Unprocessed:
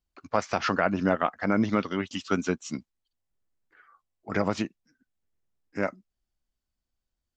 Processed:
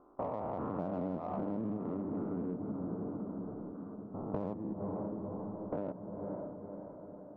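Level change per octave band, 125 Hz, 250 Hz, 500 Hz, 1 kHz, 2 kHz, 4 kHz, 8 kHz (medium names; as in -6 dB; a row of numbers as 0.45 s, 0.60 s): -6.0 dB, -7.0 dB, -8.0 dB, -11.5 dB, under -25 dB, under -30 dB, no reading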